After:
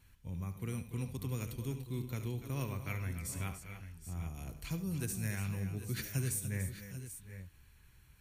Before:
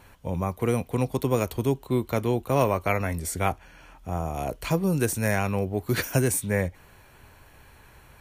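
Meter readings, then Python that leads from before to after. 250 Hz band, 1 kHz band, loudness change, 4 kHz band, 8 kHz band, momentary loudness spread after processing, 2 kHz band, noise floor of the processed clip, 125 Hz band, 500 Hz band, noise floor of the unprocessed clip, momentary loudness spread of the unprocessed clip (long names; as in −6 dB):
−13.5 dB, −22.0 dB, −13.0 dB, −11.0 dB, −9.5 dB, 10 LU, −14.5 dB, −62 dBFS, −9.0 dB, −22.0 dB, −53 dBFS, 8 LU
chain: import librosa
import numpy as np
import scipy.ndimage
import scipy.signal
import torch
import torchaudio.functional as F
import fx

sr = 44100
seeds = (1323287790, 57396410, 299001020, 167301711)

y = fx.tone_stack(x, sr, knobs='6-0-2')
y = fx.echo_multitap(y, sr, ms=(72, 101, 286, 292, 758, 790), db=(-12.0, -18.0, -16.5, -11.5, -17.0, -12.0))
y = y * 10.0 ** (4.0 / 20.0)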